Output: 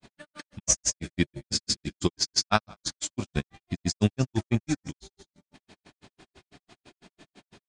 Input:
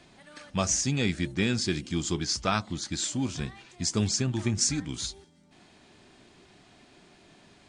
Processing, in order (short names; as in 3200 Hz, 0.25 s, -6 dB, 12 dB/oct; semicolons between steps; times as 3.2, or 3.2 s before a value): dynamic EQ 620 Hz, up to +5 dB, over -47 dBFS, Q 1.7; on a send: frequency-shifting echo 0.107 s, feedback 37%, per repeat -41 Hz, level -18 dB; on the sum: grains 0.103 s, grains 6/s, pitch spread up and down by 0 st; transient shaper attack +5 dB, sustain -10 dB; gain +2.5 dB